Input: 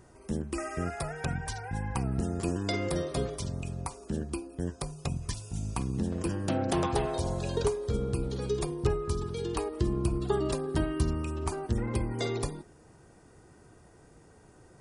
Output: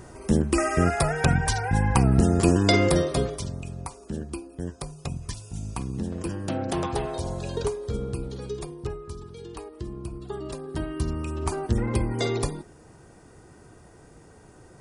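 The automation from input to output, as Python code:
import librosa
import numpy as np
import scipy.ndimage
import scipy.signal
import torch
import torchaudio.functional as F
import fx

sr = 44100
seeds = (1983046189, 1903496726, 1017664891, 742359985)

y = fx.gain(x, sr, db=fx.line((2.81, 11.5), (3.6, 0.5), (8.03, 0.5), (9.15, -7.0), (10.27, -7.0), (11.58, 5.5)))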